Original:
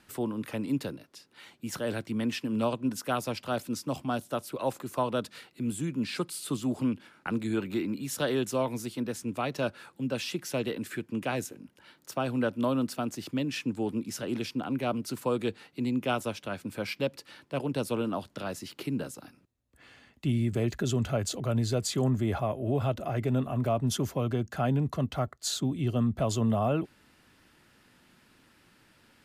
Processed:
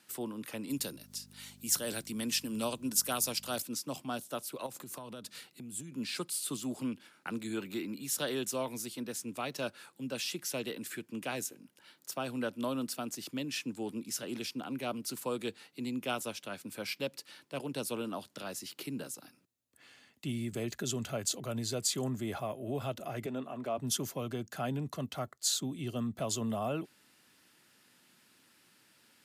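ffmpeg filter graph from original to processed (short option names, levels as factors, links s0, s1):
-filter_complex "[0:a]asettb=1/sr,asplit=3[s0][s1][s2];[s0]atrim=end=0.704[s3];[s1]atrim=start=0.7:end=3.62,asetpts=PTS-STARTPTS,afade=t=in:d=0.004:c=qsin,afade=t=out:st=2.916:d=0.004:c=qsin,bass=f=250:g=1,treble=f=4000:g=10,acompressor=mode=upward:threshold=0.00282:ratio=2.5:attack=3.2:release=140:knee=2.83:detection=peak,aeval=exprs='val(0)+0.00794*(sin(2*PI*50*n/s)+sin(2*PI*2*50*n/s)/2+sin(2*PI*3*50*n/s)/3+sin(2*PI*4*50*n/s)/4+sin(2*PI*5*50*n/s)/5)':c=same[s4];[s2]atrim=start=3.616[s5];[s3][s4]acrossfade=d=0.004:c1=hsin:c2=qsin[s6];[s6][s5]acrossfade=d=0.004:c1=qsin:c2=hsin,asettb=1/sr,asplit=3[s7][s8][s9];[s7]atrim=end=4.664[s10];[s8]atrim=start=4.66:end=5.92,asetpts=PTS-STARTPTS,afade=t=in:d=0.004:c=qsin,afade=t=out:st=1.256:d=0.004:c=qsin,bass=f=250:g=7,treble=f=4000:g=2,acompressor=threshold=0.02:ratio=10:attack=3.2:release=140:knee=1:detection=peak[s11];[s9]atrim=start=5.916[s12];[s10][s11]acrossfade=d=0.004:c1=hsin:c2=qsin[s13];[s13][s12]acrossfade=d=0.004:c1=qsin:c2=hsin,asettb=1/sr,asplit=3[s14][s15][s16];[s14]atrim=end=23.264[s17];[s15]atrim=start=23.26:end=23.78,asetpts=PTS-STARTPTS,afade=t=in:d=0.004:c=qsin,afade=t=out:st=0.516:d=0.004:c=qsin,highpass=230,aemphasis=mode=reproduction:type=50fm[s18];[s16]atrim=start=23.776[s19];[s17][s18]acrossfade=d=0.004:c1=hsin:c2=qsin[s20];[s20][s19]acrossfade=d=0.004:c1=qsin:c2=hsin,highpass=140,highshelf=f=3400:g=11.5,volume=0.447"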